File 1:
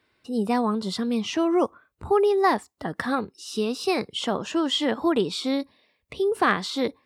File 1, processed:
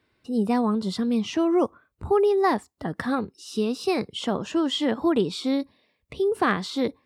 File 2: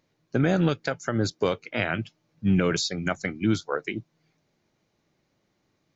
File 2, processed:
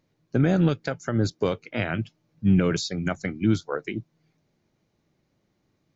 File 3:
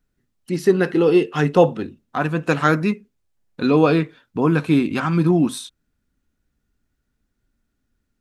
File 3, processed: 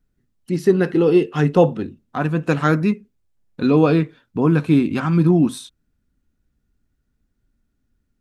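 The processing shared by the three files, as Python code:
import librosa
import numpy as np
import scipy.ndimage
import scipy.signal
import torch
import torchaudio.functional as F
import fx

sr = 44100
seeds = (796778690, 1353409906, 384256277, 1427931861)

y = fx.low_shelf(x, sr, hz=370.0, db=7.0)
y = F.gain(torch.from_numpy(y), -3.0).numpy()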